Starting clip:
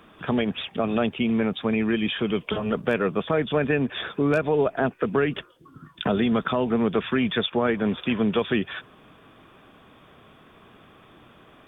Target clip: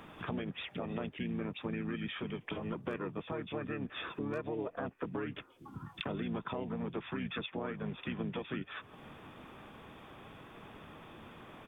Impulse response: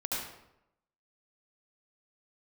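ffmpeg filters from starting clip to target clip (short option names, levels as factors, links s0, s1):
-filter_complex "[0:a]acompressor=threshold=0.00891:ratio=3,asplit=2[s0][s1];[s1]asetrate=33038,aresample=44100,atempo=1.33484,volume=0.794[s2];[s0][s2]amix=inputs=2:normalize=0,volume=0.794"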